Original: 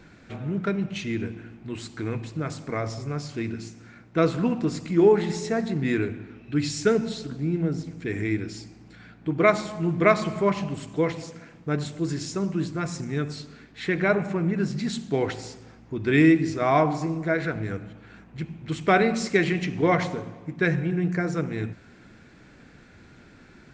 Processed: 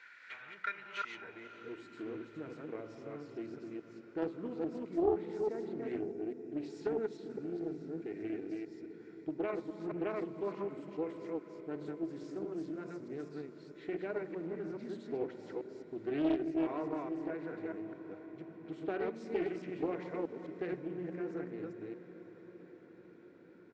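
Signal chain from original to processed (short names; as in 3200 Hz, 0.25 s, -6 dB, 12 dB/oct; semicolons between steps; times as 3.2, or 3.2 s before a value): reverse delay 0.211 s, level -2 dB; tilt shelf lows -5 dB, about 1300 Hz; in parallel at +3 dB: compressor, threshold -33 dBFS, peak gain reduction 18 dB; on the sum: band-pass sweep 1800 Hz -> 310 Hz, 0.75–1.91; on a send: diffused feedback echo 0.566 s, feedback 67%, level -14 dB; on the sum: spectral gain 6–6.57, 800–4700 Hz -8 dB; low shelf 350 Hz -8 dB; notches 50/100 Hz; comb 2.1 ms, depth 32%; Doppler distortion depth 0.39 ms; gain -5.5 dB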